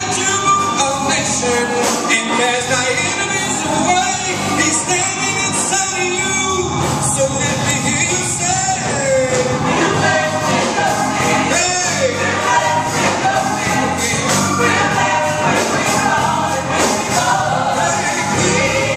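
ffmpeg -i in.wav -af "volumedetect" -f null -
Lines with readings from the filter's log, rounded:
mean_volume: -15.7 dB
max_volume: -1.3 dB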